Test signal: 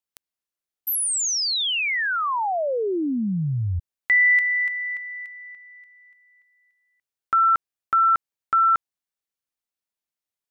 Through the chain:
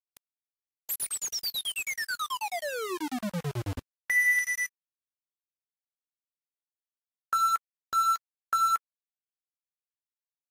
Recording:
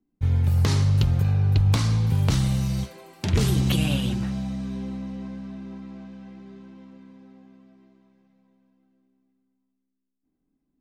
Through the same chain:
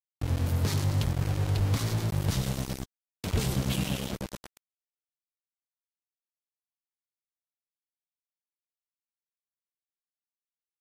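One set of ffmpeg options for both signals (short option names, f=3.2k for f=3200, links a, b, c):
-filter_complex "[0:a]acrossover=split=470[a][b];[a]aeval=exprs='val(0)*(1-0.5/2+0.5/2*cos(2*PI*9.2*n/s))':c=same[c];[b]aeval=exprs='val(0)*(1-0.5/2-0.5/2*cos(2*PI*9.2*n/s))':c=same[d];[c][d]amix=inputs=2:normalize=0,aeval=exprs='val(0)*gte(abs(val(0)),0.0596)':c=same,volume=-4.5dB" -ar 48000 -c:a libvorbis -b:a 48k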